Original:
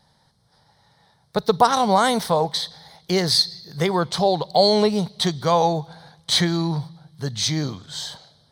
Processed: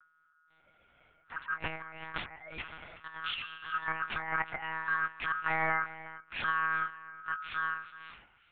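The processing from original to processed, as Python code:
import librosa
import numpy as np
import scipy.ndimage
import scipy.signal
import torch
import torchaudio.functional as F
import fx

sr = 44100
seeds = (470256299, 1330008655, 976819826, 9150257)

y = fx.doppler_pass(x, sr, speed_mps=9, closest_m=9.3, pass_at_s=2.42)
y = fx.notch(y, sr, hz=990.0, q=7.7)
y = fx.spec_paint(y, sr, seeds[0], shape='rise', start_s=2.36, length_s=0.23, low_hz=530.0, high_hz=1100.0, level_db=-18.0)
y = fx.tilt_eq(y, sr, slope=-2.0)
y = fx.over_compress(y, sr, threshold_db=-27.0, ratio=-0.5)
y = fx.add_hum(y, sr, base_hz=50, snr_db=15)
y = fx.noise_reduce_blind(y, sr, reduce_db=18)
y = y * np.sin(2.0 * np.pi * 1400.0 * np.arange(len(y)) / sr)
y = y + 10.0 ** (-16.0 / 20.0) * np.pad(y, (int(369 * sr / 1000.0), 0))[:len(y)]
y = fx.lpc_monotone(y, sr, seeds[1], pitch_hz=160.0, order=10)
y = y * librosa.db_to_amplitude(-3.5)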